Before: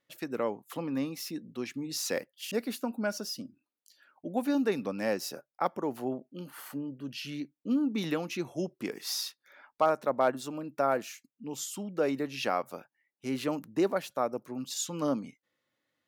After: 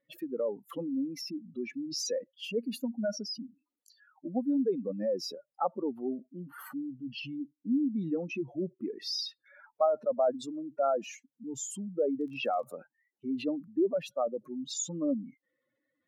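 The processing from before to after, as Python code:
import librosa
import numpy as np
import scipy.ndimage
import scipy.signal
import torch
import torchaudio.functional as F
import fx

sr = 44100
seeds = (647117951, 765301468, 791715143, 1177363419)

y = fx.spec_expand(x, sr, power=2.6)
y = fx.dmg_crackle(y, sr, seeds[0], per_s=27.0, level_db=-49.0, at=(12.16, 12.62), fade=0.02)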